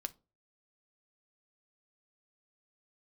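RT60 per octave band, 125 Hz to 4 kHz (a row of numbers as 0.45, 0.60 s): 0.50, 0.35, 0.35, 0.30, 0.20, 0.20 s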